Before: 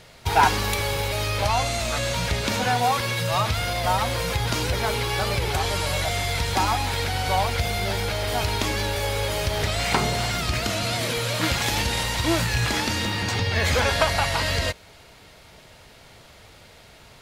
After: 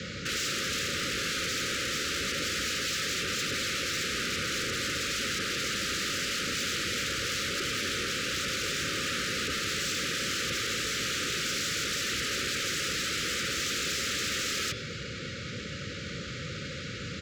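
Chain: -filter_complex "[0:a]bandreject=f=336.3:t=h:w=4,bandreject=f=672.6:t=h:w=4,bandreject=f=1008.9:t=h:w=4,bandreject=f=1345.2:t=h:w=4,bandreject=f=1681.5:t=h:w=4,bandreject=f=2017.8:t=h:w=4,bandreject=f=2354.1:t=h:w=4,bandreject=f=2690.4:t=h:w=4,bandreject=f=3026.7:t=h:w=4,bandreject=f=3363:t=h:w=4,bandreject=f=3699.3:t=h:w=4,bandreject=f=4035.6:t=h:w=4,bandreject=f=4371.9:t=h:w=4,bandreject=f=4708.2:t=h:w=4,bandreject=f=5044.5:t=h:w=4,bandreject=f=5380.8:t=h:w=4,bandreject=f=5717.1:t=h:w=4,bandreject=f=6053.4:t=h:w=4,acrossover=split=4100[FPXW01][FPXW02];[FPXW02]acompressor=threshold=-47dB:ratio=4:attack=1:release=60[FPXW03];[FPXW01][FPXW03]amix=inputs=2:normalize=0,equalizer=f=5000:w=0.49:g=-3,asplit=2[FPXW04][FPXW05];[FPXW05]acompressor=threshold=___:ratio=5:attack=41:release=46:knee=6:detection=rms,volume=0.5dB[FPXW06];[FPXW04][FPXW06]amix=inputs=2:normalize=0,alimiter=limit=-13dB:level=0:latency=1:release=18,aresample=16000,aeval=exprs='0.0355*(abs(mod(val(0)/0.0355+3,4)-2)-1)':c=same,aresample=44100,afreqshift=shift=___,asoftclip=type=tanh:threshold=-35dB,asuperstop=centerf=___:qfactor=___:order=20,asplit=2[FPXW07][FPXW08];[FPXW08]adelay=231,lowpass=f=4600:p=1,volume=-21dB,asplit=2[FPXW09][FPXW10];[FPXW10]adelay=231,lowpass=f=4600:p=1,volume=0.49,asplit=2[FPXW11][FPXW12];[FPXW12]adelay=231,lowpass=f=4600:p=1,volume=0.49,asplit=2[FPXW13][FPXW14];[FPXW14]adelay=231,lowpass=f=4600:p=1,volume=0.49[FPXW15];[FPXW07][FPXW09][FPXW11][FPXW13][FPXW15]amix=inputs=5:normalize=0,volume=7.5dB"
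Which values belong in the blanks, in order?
-36dB, 55, 830, 1.3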